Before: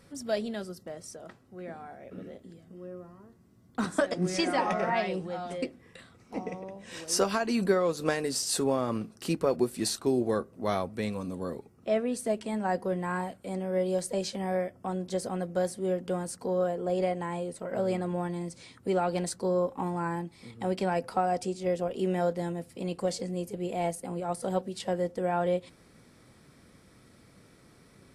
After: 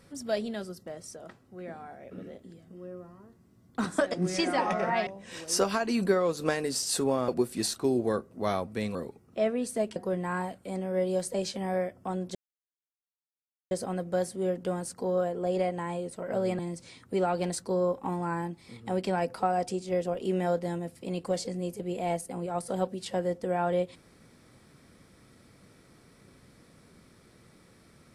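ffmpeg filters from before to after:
-filter_complex "[0:a]asplit=7[a][b][c][d][e][f][g];[a]atrim=end=5.072[h];[b]atrim=start=6.668:end=8.882[i];[c]atrim=start=9.498:end=11.172[j];[d]atrim=start=11.448:end=12.462[k];[e]atrim=start=12.748:end=15.14,asetpts=PTS-STARTPTS,afade=t=out:st=2.388:d=0.004:c=hsin,apad=pad_dur=1.36[l];[f]atrim=start=15.14:end=18.022,asetpts=PTS-STARTPTS,afade=t=in:d=0.004:c=hsin[m];[g]atrim=start=18.328[n];[h][i]acrossfade=d=0.004:c1=hsin:c2=hsin[o];[o][j]acrossfade=d=0.004:c1=hsin:c2=hsin[p];[p][k]acrossfade=d=0.004:c1=hsin:c2=hsin[q];[l][m]concat=n=2:v=0:a=1[r];[q][r]acrossfade=d=0.004:c1=hsin:c2=hsin[s];[s][n]acrossfade=d=0.004:c1=hsin:c2=hsin"

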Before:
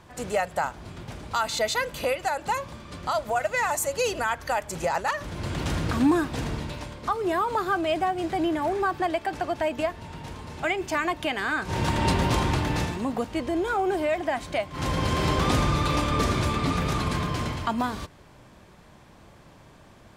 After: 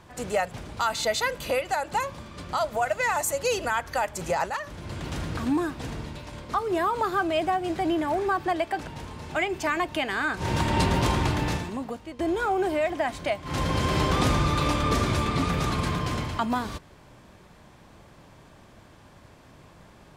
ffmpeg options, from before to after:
-filter_complex "[0:a]asplit=6[a][b][c][d][e][f];[a]atrim=end=0.522[g];[b]atrim=start=1.058:end=5.042[h];[c]atrim=start=5.038:end=6.872,asetpts=PTS-STARTPTS,volume=-4.5dB[i];[d]atrim=start=6.868:end=9.412[j];[e]atrim=start=10.148:end=13.47,asetpts=PTS-STARTPTS,afade=t=out:st=2.542:d=0.78:silence=0.199526[k];[f]atrim=start=13.47,asetpts=PTS-STARTPTS,afade=t=in:d=0.004:c=hsin:silence=0.199526[l];[g][h]acrossfade=d=0.004:c1=hsin:c2=hsin[m];[m][i]acrossfade=d=0.004:c1=hsin:c2=hsin[n];[n][j]acrossfade=d=0.004:c1=hsin:c2=hsin[o];[k][l]concat=n=2:v=0:a=1[p];[o][p]acrossfade=d=0.004:c1=hsin:c2=hsin"

